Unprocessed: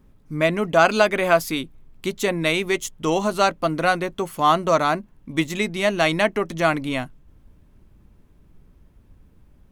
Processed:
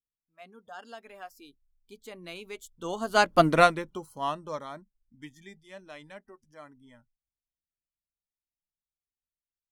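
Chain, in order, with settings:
source passing by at 0:03.46, 25 m/s, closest 4.5 metres
noise reduction from a noise print of the clip's start 21 dB
expander for the loud parts 1.5 to 1, over −34 dBFS
level +4 dB

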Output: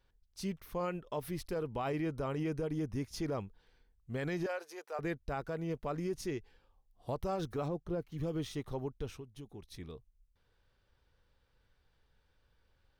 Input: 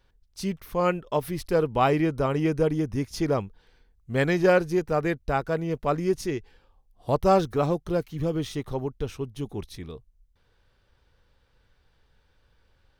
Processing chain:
0:07.68–0:08.12: high-shelf EQ 2,100 Hz −11.5 dB
brickwall limiter −19.5 dBFS, peak gain reduction 11 dB
0:04.46–0:04.99: high-pass filter 520 Hz 24 dB per octave
0:09.12–0:09.72: downward compressor 6 to 1, threshold −37 dBFS, peak gain reduction 10.5 dB
level −8 dB

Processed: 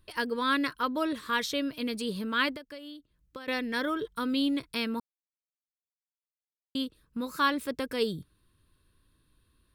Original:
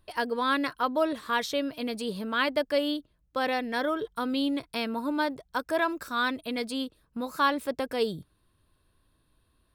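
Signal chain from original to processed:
parametric band 720 Hz −12 dB 0.67 octaves
0:02.53–0:03.48: downward compressor 20 to 1, threshold −41 dBFS, peak gain reduction 17.5 dB
0:05.00–0:06.75: silence
level +1 dB

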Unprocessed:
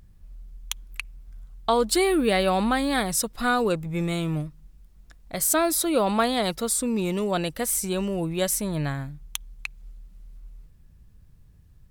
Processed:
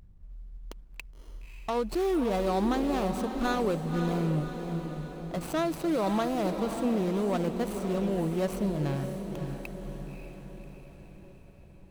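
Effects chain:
running median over 25 samples
brickwall limiter −20.5 dBFS, peak gain reduction 8 dB
on a send: feedback delay with all-pass diffusion 567 ms, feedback 55%, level −7 dB
on the sum: level −1.5 dB

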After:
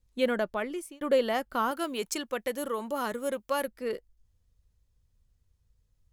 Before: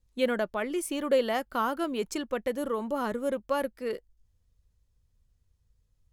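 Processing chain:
0:00.57–0:01.01: fade out
0:01.71–0:03.68: spectral tilt +2 dB per octave

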